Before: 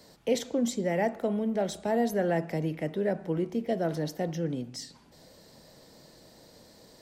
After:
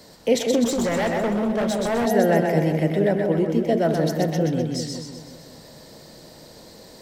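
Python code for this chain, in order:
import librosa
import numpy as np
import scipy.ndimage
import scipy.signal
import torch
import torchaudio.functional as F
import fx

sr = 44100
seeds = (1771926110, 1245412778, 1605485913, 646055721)

y = fx.echo_split(x, sr, split_hz=640.0, low_ms=185, high_ms=127, feedback_pct=52, wet_db=-3.5)
y = fx.clip_hard(y, sr, threshold_db=-27.0, at=(0.64, 2.06))
y = y * librosa.db_to_amplitude(7.5)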